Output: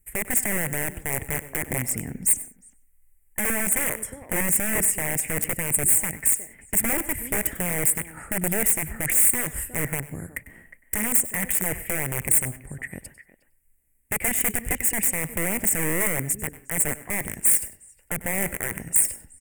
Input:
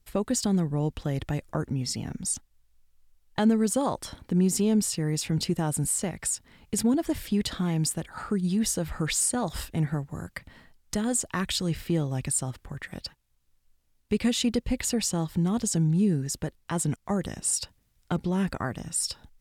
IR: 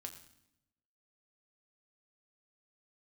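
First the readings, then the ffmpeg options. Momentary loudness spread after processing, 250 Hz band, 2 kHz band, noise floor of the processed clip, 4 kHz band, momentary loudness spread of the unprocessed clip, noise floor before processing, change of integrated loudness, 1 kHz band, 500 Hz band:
11 LU, −7.0 dB, +11.5 dB, −62 dBFS, −9.5 dB, 9 LU, −68 dBFS, +5.0 dB, 0.0 dB, −1.0 dB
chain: -filter_complex "[0:a]asplit=2[link_01][link_02];[link_02]adelay=360,highpass=300,lowpass=3400,asoftclip=type=hard:threshold=-22dB,volume=-14dB[link_03];[link_01][link_03]amix=inputs=2:normalize=0,aeval=exprs='0.224*(cos(1*acos(clip(val(0)/0.224,-1,1)))-cos(1*PI/2))+0.0178*(cos(3*acos(clip(val(0)/0.224,-1,1)))-cos(3*PI/2))+0.00631*(cos(4*acos(clip(val(0)/0.224,-1,1)))-cos(4*PI/2))+0.00282*(cos(8*acos(clip(val(0)/0.224,-1,1)))-cos(8*PI/2))':channel_layout=same,aeval=exprs='(mod(13.3*val(0)+1,2)-1)/13.3':channel_layout=same,firequalizer=gain_entry='entry(430,0);entry(1200,-10);entry(2000,8);entry(4000,-27);entry(8200,11)':delay=0.05:min_phase=1,asplit=2[link_04][link_05];[1:a]atrim=start_sample=2205,atrim=end_sample=4410,adelay=97[link_06];[link_05][link_06]afir=irnorm=-1:irlink=0,volume=-11.5dB[link_07];[link_04][link_07]amix=inputs=2:normalize=0,volume=2.5dB"

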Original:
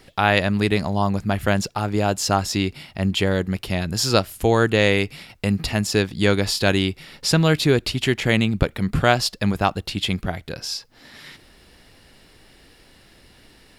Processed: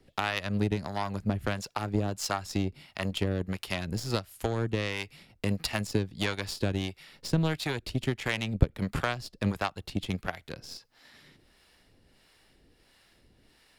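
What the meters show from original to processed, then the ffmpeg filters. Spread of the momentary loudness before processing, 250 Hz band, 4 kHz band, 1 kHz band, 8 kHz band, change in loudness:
8 LU, −10.0 dB, −12.0 dB, −11.5 dB, −12.5 dB, −10.5 dB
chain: -filter_complex "[0:a]acrossover=split=140[link_01][link_02];[link_02]acompressor=threshold=-23dB:ratio=8[link_03];[link_01][link_03]amix=inputs=2:normalize=0,aeval=exprs='0.398*(cos(1*acos(clip(val(0)/0.398,-1,1)))-cos(1*PI/2))+0.0355*(cos(7*acos(clip(val(0)/0.398,-1,1)))-cos(7*PI/2))+0.00794*(cos(8*acos(clip(val(0)/0.398,-1,1)))-cos(8*PI/2))':channel_layout=same,acrossover=split=580[link_04][link_05];[link_04]aeval=exprs='val(0)*(1-0.7/2+0.7/2*cos(2*PI*1.5*n/s))':channel_layout=same[link_06];[link_05]aeval=exprs='val(0)*(1-0.7/2-0.7/2*cos(2*PI*1.5*n/s))':channel_layout=same[link_07];[link_06][link_07]amix=inputs=2:normalize=0"

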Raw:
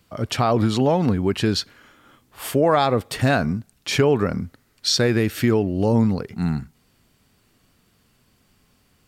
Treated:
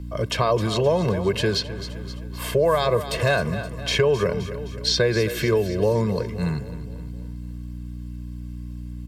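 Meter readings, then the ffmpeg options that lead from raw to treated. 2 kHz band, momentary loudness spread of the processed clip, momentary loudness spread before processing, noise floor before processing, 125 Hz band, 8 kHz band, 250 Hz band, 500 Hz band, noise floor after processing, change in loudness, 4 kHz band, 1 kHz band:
+0.5 dB, 16 LU, 9 LU, −63 dBFS, −2.0 dB, −2.5 dB, −6.0 dB, +1.0 dB, −34 dBFS, −2.0 dB, 0.0 dB, −3.5 dB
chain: -filter_complex "[0:a]bandreject=frequency=1400:width=12,aecho=1:1:1.9:0.95,aecho=1:1:260|520|780|1040|1300:0.178|0.0942|0.05|0.0265|0.014,aeval=exprs='val(0)+0.0282*(sin(2*PI*60*n/s)+sin(2*PI*2*60*n/s)/2+sin(2*PI*3*60*n/s)/3+sin(2*PI*4*60*n/s)/4+sin(2*PI*5*60*n/s)/5)':channel_layout=same,acrossover=split=150|4700[link_01][link_02][link_03];[link_01]acompressor=threshold=-31dB:ratio=4[link_04];[link_02]acompressor=threshold=-16dB:ratio=4[link_05];[link_03]acompressor=threshold=-36dB:ratio=4[link_06];[link_04][link_05][link_06]amix=inputs=3:normalize=0" -ar 44100 -c:a libmp3lame -b:a 80k

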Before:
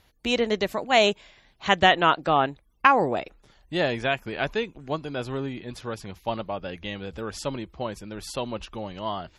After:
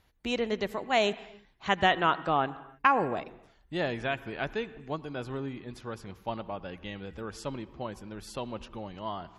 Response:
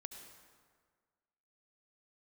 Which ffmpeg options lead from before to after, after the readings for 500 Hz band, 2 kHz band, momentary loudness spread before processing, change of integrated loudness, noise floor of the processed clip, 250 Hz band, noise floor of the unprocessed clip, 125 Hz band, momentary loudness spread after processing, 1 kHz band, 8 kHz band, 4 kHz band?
−6.0 dB, −6.0 dB, 15 LU, −6.0 dB, −63 dBFS, −5.0 dB, −62 dBFS, −4.5 dB, 15 LU, −5.5 dB, can't be measured, −8.0 dB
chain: -filter_complex "[0:a]asplit=2[link_01][link_02];[link_02]equalizer=frequency=590:width=3.1:gain=-10[link_03];[1:a]atrim=start_sample=2205,afade=type=out:start_time=0.38:duration=0.01,atrim=end_sample=17199,lowpass=2500[link_04];[link_03][link_04]afir=irnorm=-1:irlink=0,volume=-1.5dB[link_05];[link_01][link_05]amix=inputs=2:normalize=0,volume=-8dB"

